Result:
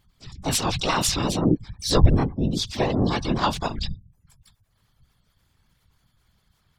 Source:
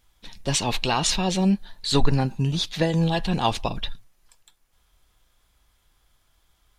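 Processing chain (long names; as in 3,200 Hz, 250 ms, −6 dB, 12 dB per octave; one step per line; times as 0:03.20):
gate on every frequency bin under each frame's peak −30 dB strong
pitch-shifted copies added +5 semitones −1 dB, +12 semitones −17 dB
random phases in short frames
level −2.5 dB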